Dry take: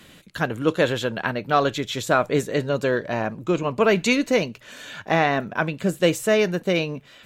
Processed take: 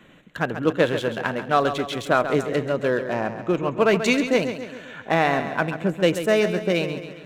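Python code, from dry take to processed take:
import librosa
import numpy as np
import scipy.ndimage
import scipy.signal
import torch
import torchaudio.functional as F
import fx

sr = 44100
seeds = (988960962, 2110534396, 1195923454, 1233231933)

p1 = fx.wiener(x, sr, points=9)
p2 = fx.peak_eq(p1, sr, hz=67.0, db=-10.0, octaves=1.1)
y = p2 + fx.echo_feedback(p2, sr, ms=136, feedback_pct=52, wet_db=-10.0, dry=0)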